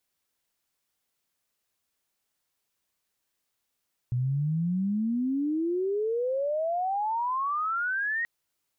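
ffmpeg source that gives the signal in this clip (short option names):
-f lavfi -i "aevalsrc='pow(10,(-24-2*t/4.13)/20)*sin(2*PI*120*4.13/log(1900/120)*(exp(log(1900/120)*t/4.13)-1))':d=4.13:s=44100"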